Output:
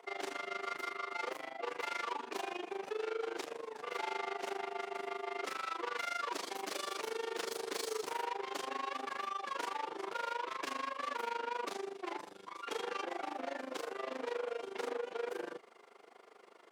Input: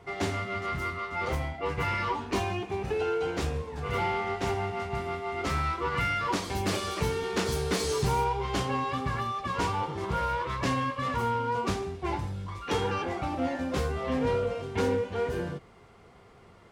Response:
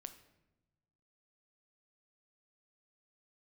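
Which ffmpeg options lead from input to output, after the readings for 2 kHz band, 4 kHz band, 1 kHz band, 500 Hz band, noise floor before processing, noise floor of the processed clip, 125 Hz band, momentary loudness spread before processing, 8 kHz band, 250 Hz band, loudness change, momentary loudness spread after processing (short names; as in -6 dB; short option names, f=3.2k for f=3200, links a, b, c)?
-7.5 dB, -7.0 dB, -8.5 dB, -9.0 dB, -54 dBFS, -59 dBFS, under -35 dB, 5 LU, -8.0 dB, -15.5 dB, -9.5 dB, 4 LU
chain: -af "asoftclip=type=tanh:threshold=-32.5dB,tremolo=f=25:d=0.889,highpass=f=330:w=0.5412,highpass=f=330:w=1.3066,volume=1dB"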